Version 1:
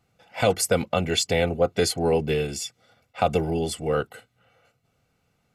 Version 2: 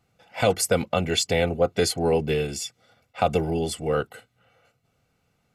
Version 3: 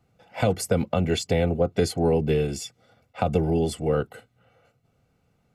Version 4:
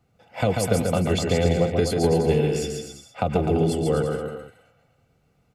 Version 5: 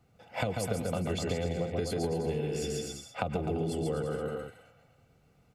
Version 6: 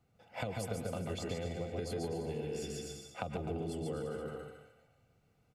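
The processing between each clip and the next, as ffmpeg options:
-af anull
-filter_complex "[0:a]acrossover=split=270[a][b];[b]acompressor=threshold=-23dB:ratio=4[c];[a][c]amix=inputs=2:normalize=0,tiltshelf=f=970:g=4"
-af "aecho=1:1:140|252|341.6|413.3|470.6:0.631|0.398|0.251|0.158|0.1"
-af "acompressor=threshold=-29dB:ratio=6"
-af "aecho=1:1:149|298|447:0.355|0.0923|0.024,volume=-7dB"

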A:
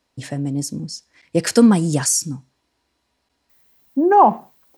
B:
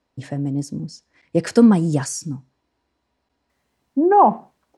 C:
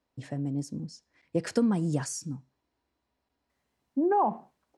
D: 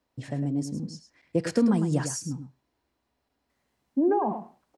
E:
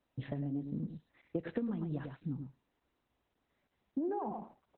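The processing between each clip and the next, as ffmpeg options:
-af "lowpass=10k,highshelf=f=2.2k:g=-10"
-af "acompressor=threshold=-13dB:ratio=6,volume=-8dB"
-filter_complex "[0:a]acrossover=split=500[a][b];[b]alimiter=level_in=3.5dB:limit=-24dB:level=0:latency=1:release=30,volume=-3.5dB[c];[a][c]amix=inputs=2:normalize=0,asplit=2[d][e];[e]adelay=105,volume=-9dB,highshelf=f=4k:g=-2.36[f];[d][f]amix=inputs=2:normalize=0,volume=3dB"
-af "acompressor=threshold=-31dB:ratio=8,volume=-2dB" -ar 48000 -c:a libopus -b:a 8k

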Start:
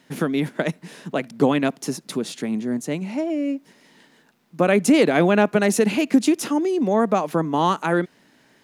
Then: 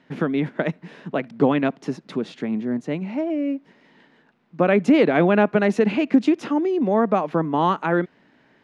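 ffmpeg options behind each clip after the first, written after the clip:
-af "lowpass=2.7k"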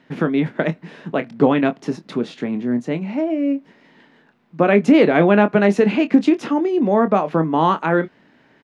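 -filter_complex "[0:a]asplit=2[a][b];[b]adelay=25,volume=-10.5dB[c];[a][c]amix=inputs=2:normalize=0,volume=3dB"

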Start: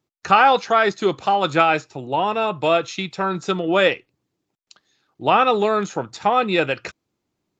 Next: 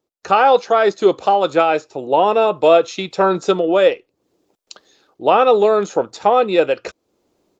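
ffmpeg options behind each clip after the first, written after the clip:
-af "equalizer=f=125:t=o:w=1:g=-9,equalizer=f=500:t=o:w=1:g=9,equalizer=f=2k:t=o:w=1:g=-4,dynaudnorm=f=180:g=3:m=12dB,volume=-1dB"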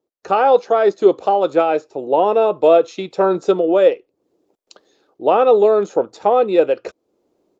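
-af "equalizer=f=420:t=o:w=2.4:g=9.5,volume=-8dB"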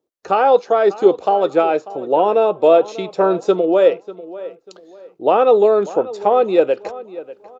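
-filter_complex "[0:a]asplit=2[a][b];[b]adelay=593,lowpass=f=3.6k:p=1,volume=-17dB,asplit=2[c][d];[d]adelay=593,lowpass=f=3.6k:p=1,volume=0.3,asplit=2[e][f];[f]adelay=593,lowpass=f=3.6k:p=1,volume=0.3[g];[a][c][e][g]amix=inputs=4:normalize=0"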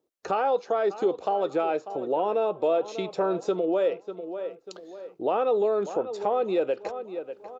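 -filter_complex "[0:a]asplit=2[a][b];[b]alimiter=limit=-12dB:level=0:latency=1:release=62,volume=2.5dB[c];[a][c]amix=inputs=2:normalize=0,acompressor=threshold=-27dB:ratio=1.5,volume=-8dB"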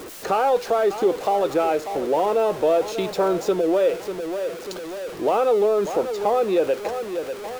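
-af "aeval=exprs='val(0)+0.5*0.0188*sgn(val(0))':c=same,volume=4dB"

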